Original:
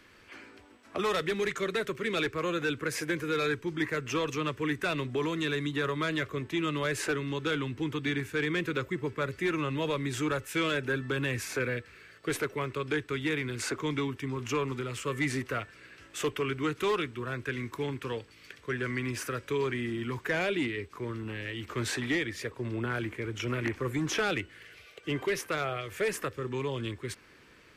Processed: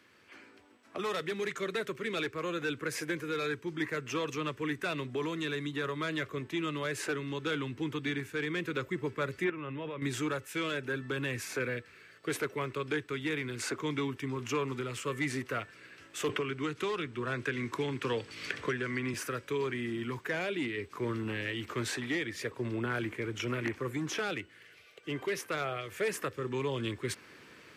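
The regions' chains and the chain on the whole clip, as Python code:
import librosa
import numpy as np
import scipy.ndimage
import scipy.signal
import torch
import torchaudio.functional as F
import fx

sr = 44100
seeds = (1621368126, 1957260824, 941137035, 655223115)

y = fx.chain(x, sr, fx.savgol(points=25),
    fx.level_steps(step_db=14), at=(9.44, 10.02))
y = fx.chain(y, sr, fx.lowpass(hz=9200.0, slope=12),
    fx.band_squash(depth_pct=100), at=(16.29, 19.14))
y = scipy.signal.sosfilt(scipy.signal.butter(2, 110.0, 'highpass', fs=sr, output='sos'), y)
y = fx.rider(y, sr, range_db=10, speed_s=0.5)
y = y * 10.0 ** (-2.5 / 20.0)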